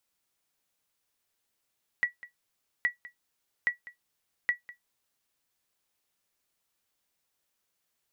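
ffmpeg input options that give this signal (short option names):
-f lavfi -i "aevalsrc='0.141*(sin(2*PI*1940*mod(t,0.82))*exp(-6.91*mod(t,0.82)/0.13)+0.112*sin(2*PI*1940*max(mod(t,0.82)-0.2,0))*exp(-6.91*max(mod(t,0.82)-0.2,0)/0.13))':d=3.28:s=44100"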